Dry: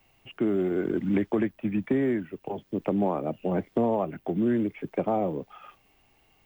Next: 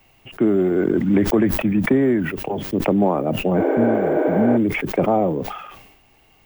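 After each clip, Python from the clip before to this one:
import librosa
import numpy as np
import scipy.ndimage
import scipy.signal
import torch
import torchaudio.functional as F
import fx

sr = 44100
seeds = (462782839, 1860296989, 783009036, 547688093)

y = fx.spec_repair(x, sr, seeds[0], start_s=3.62, length_s=0.93, low_hz=260.0, high_hz=9500.0, source='before')
y = fx.dynamic_eq(y, sr, hz=2800.0, q=1.3, threshold_db=-50.0, ratio=4.0, max_db=-5)
y = fx.sustainer(y, sr, db_per_s=55.0)
y = F.gain(torch.from_numpy(y), 8.0).numpy()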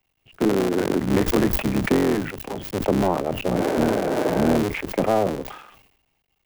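y = fx.cycle_switch(x, sr, every=3, mode='muted')
y = fx.band_widen(y, sr, depth_pct=40)
y = F.gain(torch.from_numpy(y), -1.5).numpy()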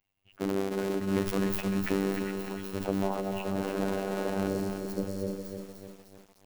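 y = fx.robotise(x, sr, hz=97.6)
y = fx.spec_erase(y, sr, start_s=4.48, length_s=1.52, low_hz=600.0, high_hz=4100.0)
y = fx.echo_crushed(y, sr, ms=302, feedback_pct=55, bits=7, wet_db=-6)
y = F.gain(torch.from_numpy(y), -8.0).numpy()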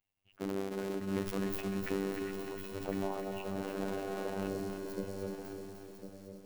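y = x + 10.0 ** (-9.5 / 20.0) * np.pad(x, (int(1053 * sr / 1000.0), 0))[:len(x)]
y = F.gain(torch.from_numpy(y), -6.5).numpy()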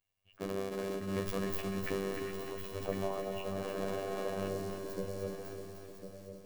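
y = fx.doubler(x, sr, ms=12.0, db=-4)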